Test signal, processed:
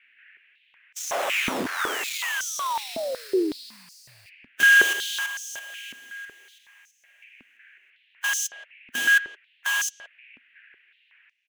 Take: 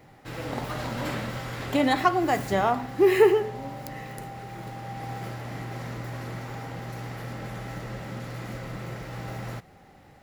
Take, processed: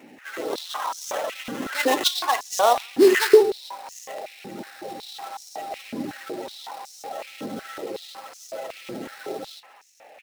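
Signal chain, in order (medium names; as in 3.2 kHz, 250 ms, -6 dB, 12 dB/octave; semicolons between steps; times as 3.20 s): coarse spectral quantiser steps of 30 dB; sample-rate reducer 4.7 kHz, jitter 20%; band noise 1.6–2.8 kHz -61 dBFS; speakerphone echo 170 ms, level -16 dB; step-sequenced high-pass 5.4 Hz 250–6000 Hz; trim +1 dB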